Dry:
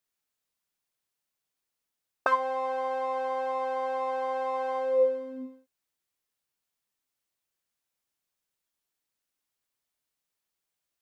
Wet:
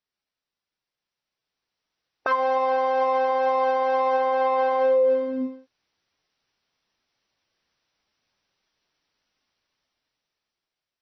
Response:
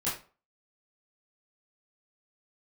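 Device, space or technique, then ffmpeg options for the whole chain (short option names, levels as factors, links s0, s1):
low-bitrate web radio: -filter_complex "[0:a]asettb=1/sr,asplit=3[s0][s1][s2];[s0]atrim=end=4.174[s3];[s1]atrim=start=4.17:end=5.33,asetpts=PTS-STARTPTS,afade=t=in:d=0.004:c=qsin,afade=t=out:st=1.156:d=0.004:c=qsin,lowpass=5200[s4];[s2]atrim=start=5.326[s5];[s3][s4]acrossfade=d=0.004:c1=hsin:c2=qsin[s6];[s6][s5]acrossfade=d=0.004:c1=qsin:c2=hsin,dynaudnorm=f=490:g=7:m=4.47,alimiter=limit=0.2:level=0:latency=1:release=62" -ar 24000 -c:a libmp3lame -b:a 24k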